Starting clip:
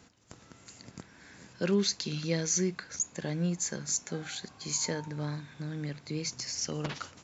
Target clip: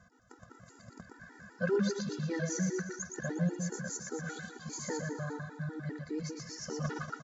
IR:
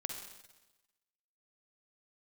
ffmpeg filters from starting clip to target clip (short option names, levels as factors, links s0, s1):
-af "highshelf=f=2000:t=q:w=3:g=-7,bandreject=f=4200:w=22,aecho=1:1:119|238|357|476|595|714|833:0.631|0.322|0.164|0.0837|0.0427|0.0218|0.0111,afftfilt=real='re*gt(sin(2*PI*5*pts/sr)*(1-2*mod(floor(b*sr/1024/250),2)),0)':imag='im*gt(sin(2*PI*5*pts/sr)*(1-2*mod(floor(b*sr/1024/250),2)),0)':win_size=1024:overlap=0.75"